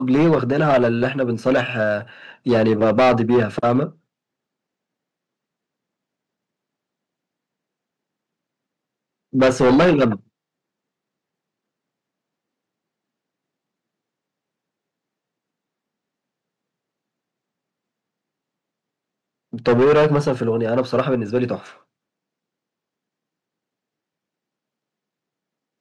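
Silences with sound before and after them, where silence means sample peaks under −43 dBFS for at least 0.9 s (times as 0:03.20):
0:03.91–0:09.33
0:10.20–0:19.53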